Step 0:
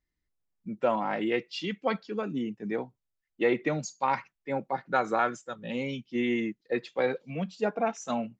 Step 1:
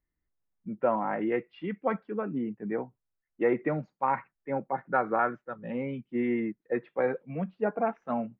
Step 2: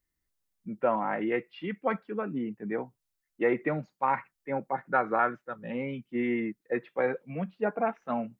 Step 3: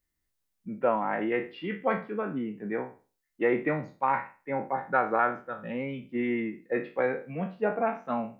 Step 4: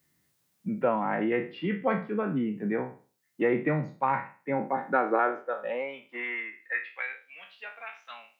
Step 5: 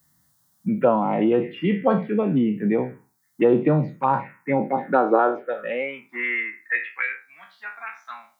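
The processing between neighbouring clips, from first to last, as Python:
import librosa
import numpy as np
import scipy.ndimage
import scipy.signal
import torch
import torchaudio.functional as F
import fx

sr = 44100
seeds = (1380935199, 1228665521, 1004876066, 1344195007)

y1 = scipy.signal.sosfilt(scipy.signal.butter(4, 1900.0, 'lowpass', fs=sr, output='sos'), x)
y2 = fx.high_shelf(y1, sr, hz=2400.0, db=10.5)
y2 = y2 * 10.0 ** (-1.0 / 20.0)
y3 = fx.spec_trails(y2, sr, decay_s=0.35)
y3 = fx.end_taper(y3, sr, db_per_s=210.0)
y4 = fx.filter_sweep_highpass(y3, sr, from_hz=140.0, to_hz=3300.0, start_s=4.38, end_s=7.3, q=2.2)
y4 = fx.band_squash(y4, sr, depth_pct=40)
y5 = fx.env_phaser(y4, sr, low_hz=420.0, high_hz=2100.0, full_db=-22.5)
y5 = y5 * 10.0 ** (9.0 / 20.0)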